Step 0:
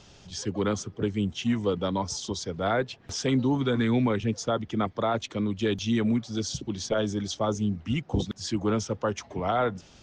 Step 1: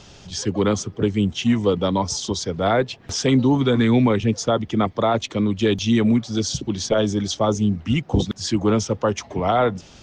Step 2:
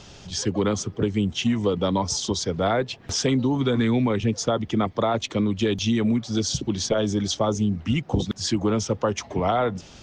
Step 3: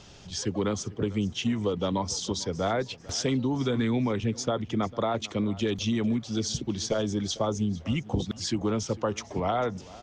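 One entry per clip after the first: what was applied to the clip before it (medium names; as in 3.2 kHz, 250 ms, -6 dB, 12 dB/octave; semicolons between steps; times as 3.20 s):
dynamic bell 1.5 kHz, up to -4 dB, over -48 dBFS, Q 3.5; trim +7.5 dB
compression, threshold -18 dBFS, peak gain reduction 6 dB
feedback delay 448 ms, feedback 30%, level -20 dB; trim -5 dB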